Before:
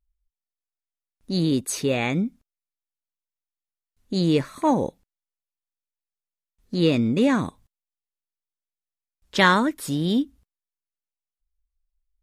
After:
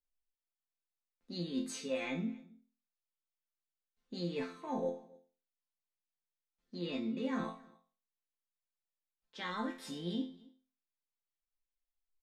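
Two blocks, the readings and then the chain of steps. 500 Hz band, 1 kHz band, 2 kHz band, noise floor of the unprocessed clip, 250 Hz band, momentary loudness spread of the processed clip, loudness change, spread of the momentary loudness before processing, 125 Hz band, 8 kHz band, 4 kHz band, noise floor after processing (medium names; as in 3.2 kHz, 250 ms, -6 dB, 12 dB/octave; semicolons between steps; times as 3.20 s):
-15.0 dB, -18.5 dB, -19.5 dB, under -85 dBFS, -16.0 dB, 12 LU, -16.5 dB, 12 LU, -19.5 dB, -17.0 dB, -16.0 dB, under -85 dBFS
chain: three-band isolator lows -14 dB, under 190 Hz, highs -18 dB, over 6.3 kHz; reverse; compression 6:1, threshold -28 dBFS, peak gain reduction 15.5 dB; reverse; chord resonator F3 major, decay 0.38 s; on a send: delay 271 ms -23.5 dB; on the sum: trim +11 dB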